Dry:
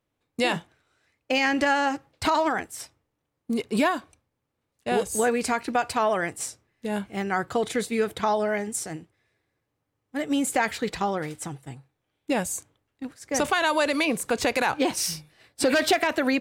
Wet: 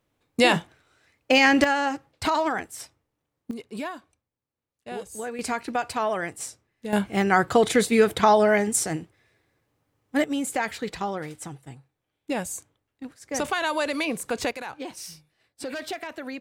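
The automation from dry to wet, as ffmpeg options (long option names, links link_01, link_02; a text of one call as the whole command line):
ffmpeg -i in.wav -af "asetnsamples=nb_out_samples=441:pad=0,asendcmd='1.64 volume volume -1dB;3.51 volume volume -10.5dB;5.39 volume volume -2.5dB;6.93 volume volume 6.5dB;10.24 volume volume -3dB;14.51 volume volume -12dB',volume=5.5dB" out.wav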